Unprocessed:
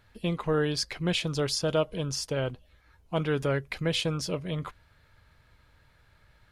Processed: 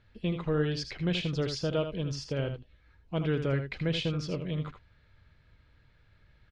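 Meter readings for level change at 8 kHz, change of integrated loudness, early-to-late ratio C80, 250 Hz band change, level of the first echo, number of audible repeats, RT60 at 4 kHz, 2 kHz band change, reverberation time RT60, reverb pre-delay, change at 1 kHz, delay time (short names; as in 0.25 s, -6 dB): -11.5 dB, -2.5 dB, none, -0.5 dB, -8.5 dB, 1, none, -4.0 dB, none, none, -6.5 dB, 79 ms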